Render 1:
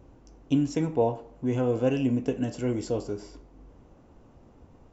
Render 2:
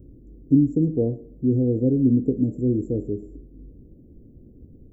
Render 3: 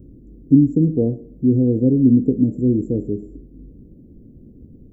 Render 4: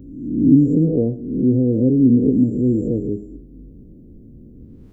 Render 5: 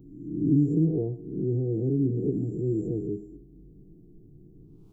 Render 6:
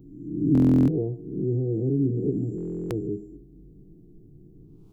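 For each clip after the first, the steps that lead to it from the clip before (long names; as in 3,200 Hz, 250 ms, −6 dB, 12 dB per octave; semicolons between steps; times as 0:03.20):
inverse Chebyshev band-stop filter 1,100–5,000 Hz, stop band 60 dB; level +7.5 dB
parametric band 200 Hz +5.5 dB 1.1 octaves; level +1.5 dB
peak hold with a rise ahead of every peak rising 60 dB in 0.90 s; level −1 dB
phaser with its sweep stopped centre 360 Hz, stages 8; level −5.5 dB
buffer that repeats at 0:00.53/0:02.56, samples 1,024, times 14; level +1.5 dB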